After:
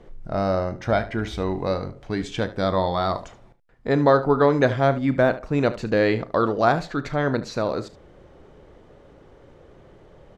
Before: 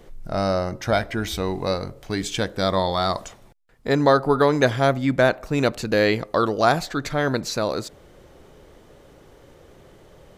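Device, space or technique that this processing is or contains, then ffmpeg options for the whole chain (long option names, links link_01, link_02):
through cloth: -filter_complex "[0:a]lowpass=8600,highshelf=frequency=3500:gain=-13,asettb=1/sr,asplit=3[link_01][link_02][link_03];[link_01]atrim=end=5.054[link_04];[link_02]atrim=start=5.05:end=5.63,asetpts=PTS-STARTPTS,afade=type=in:duration=0.004:curve=qsin,afade=type=out:start_time=0.576:duration=0.004:curve=qsin,deesser=0.8[link_05];[link_03]atrim=start=5.626[link_06];[link_04][link_05]acrossfade=duration=0.004:curve1=hsin:curve2=qsin[link_07];[link_07][link_06]acrossfade=duration=0.004:curve1=qsin:curve2=hsin,aecho=1:1:35|74:0.158|0.168"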